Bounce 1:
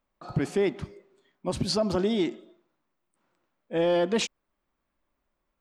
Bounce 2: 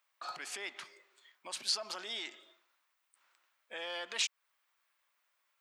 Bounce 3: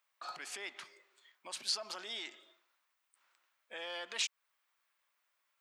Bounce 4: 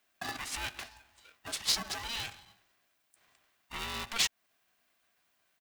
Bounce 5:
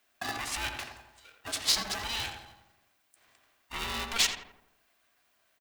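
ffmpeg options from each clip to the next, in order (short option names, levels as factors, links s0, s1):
-af "alimiter=level_in=1.58:limit=0.0631:level=0:latency=1:release=236,volume=0.631,highpass=1500,volume=2.51"
-af "bandreject=f=60:t=h:w=6,bandreject=f=120:t=h:w=6,volume=0.794"
-af "aecho=1:1:2.6:0.91,aeval=exprs='val(0)*sgn(sin(2*PI*460*n/s))':c=same,volume=1.5"
-filter_complex "[0:a]equalizer=f=170:w=7.8:g=-13.5,asplit=2[s0][s1];[s1]adelay=84,lowpass=f=1700:p=1,volume=0.596,asplit=2[s2][s3];[s3]adelay=84,lowpass=f=1700:p=1,volume=0.53,asplit=2[s4][s5];[s5]adelay=84,lowpass=f=1700:p=1,volume=0.53,asplit=2[s6][s7];[s7]adelay=84,lowpass=f=1700:p=1,volume=0.53,asplit=2[s8][s9];[s9]adelay=84,lowpass=f=1700:p=1,volume=0.53,asplit=2[s10][s11];[s11]adelay=84,lowpass=f=1700:p=1,volume=0.53,asplit=2[s12][s13];[s13]adelay=84,lowpass=f=1700:p=1,volume=0.53[s14];[s2][s4][s6][s8][s10][s12][s14]amix=inputs=7:normalize=0[s15];[s0][s15]amix=inputs=2:normalize=0,volume=1.41"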